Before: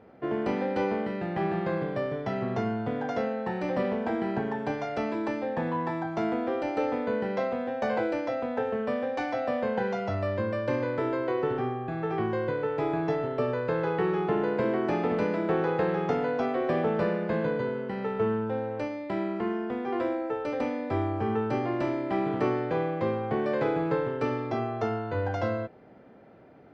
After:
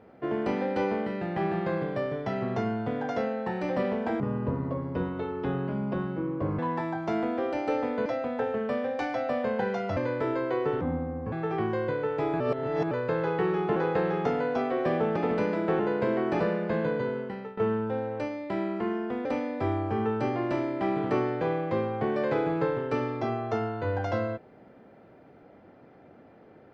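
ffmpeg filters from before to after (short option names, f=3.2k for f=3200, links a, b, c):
-filter_complex "[0:a]asplit=15[a][b][c][d][e][f][g][h][i][j][k][l][m][n][o];[a]atrim=end=4.204[p];[b]atrim=start=4.2:end=5.68,asetpts=PTS-STARTPTS,asetrate=27342,aresample=44100[q];[c]atrim=start=5.676:end=7.152[r];[d]atrim=start=8.238:end=10.152[s];[e]atrim=start=10.738:end=11.584[t];[f]atrim=start=11.58:end=11.92,asetpts=PTS-STARTPTS,asetrate=29106,aresample=44100,atrim=end_sample=22718,asetpts=PTS-STARTPTS[u];[g]atrim=start=11.916:end=13.002[v];[h]atrim=start=12.998:end=13.512,asetpts=PTS-STARTPTS,areverse[w];[i]atrim=start=13.508:end=14.362[x];[j]atrim=start=15.598:end=17.002[y];[k]atrim=start=14.968:end=15.602[z];[l]atrim=start=14.358:end=14.972[aa];[m]atrim=start=16.998:end=18.17,asetpts=PTS-STARTPTS,afade=t=out:st=0.792:d=0.38:silence=0.141254[ab];[n]atrim=start=18.17:end=19.852,asetpts=PTS-STARTPTS,afade=t=in:d=0.004:c=hsin:silence=0.141254[ac];[o]atrim=start=20.548[ad];[p][q]acrossfade=d=0.004:c1=hsin:c2=hsin[ae];[ae][r]acrossfade=d=0.004:c1=hsin:c2=hsin[af];[af][s]acrossfade=d=0.004:c1=hsin:c2=hsin[ag];[ag][t]acrossfade=d=0.004:c1=hsin:c2=hsin[ah];[ah][u]acrossfade=d=0.004:c1=hsin:c2=hsin[ai];[ai][v]acrossfade=d=0.004:c1=hsin:c2=hsin[aj];[aj][w]acrossfade=d=0.004:c1=hsin:c2=hsin[ak];[ak][x]acrossfade=d=0.004:c1=hsin:c2=hsin[al];[al][y]acrossfade=d=0.004:c1=hsin:c2=hsin[am];[am][z]acrossfade=d=0.004:c1=hsin:c2=hsin[an];[an][aa]acrossfade=d=0.004:c1=hsin:c2=hsin[ao];[ab][ac]concat=n=2:v=0:a=1[ap];[ao][ap]acrossfade=d=0.004:c1=hsin:c2=hsin[aq];[aq][ad]acrossfade=d=0.004:c1=hsin:c2=hsin"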